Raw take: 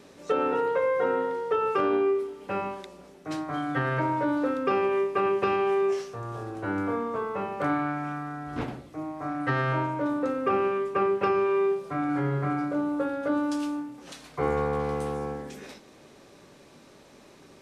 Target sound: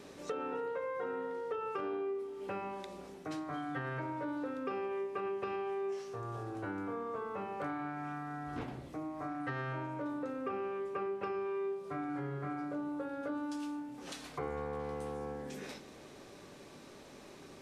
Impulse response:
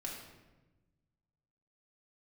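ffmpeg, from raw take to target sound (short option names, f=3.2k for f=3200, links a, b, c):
-filter_complex "[0:a]asplit=2[a][b];[1:a]atrim=start_sample=2205,asetrate=66150,aresample=44100[c];[b][c]afir=irnorm=-1:irlink=0,volume=-6.5dB[d];[a][d]amix=inputs=2:normalize=0,acompressor=threshold=-38dB:ratio=3,volume=-2dB"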